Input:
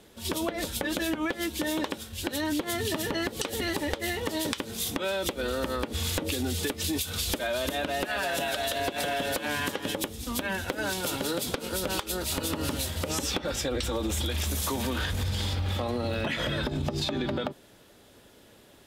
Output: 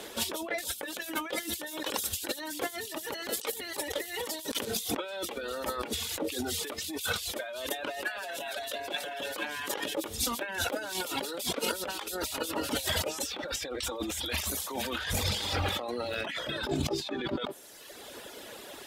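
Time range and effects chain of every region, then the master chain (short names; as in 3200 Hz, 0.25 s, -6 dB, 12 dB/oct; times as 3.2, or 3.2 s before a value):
0.58–4.65 high shelf 4900 Hz +11 dB + de-hum 47.09 Hz, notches 13 + echo 0.118 s -11 dB
whole clip: reverb removal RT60 0.9 s; tone controls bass -15 dB, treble 0 dB; negative-ratio compressor -42 dBFS, ratio -1; gain +6.5 dB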